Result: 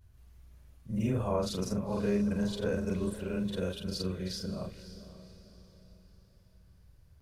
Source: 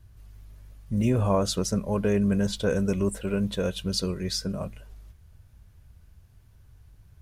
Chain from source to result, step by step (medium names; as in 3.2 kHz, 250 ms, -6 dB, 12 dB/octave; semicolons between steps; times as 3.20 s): short-time spectra conjugated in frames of 108 ms; dynamic bell 7.5 kHz, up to -6 dB, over -52 dBFS, Q 1.1; echo that smears into a reverb 532 ms, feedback 41%, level -13.5 dB; trim -3.5 dB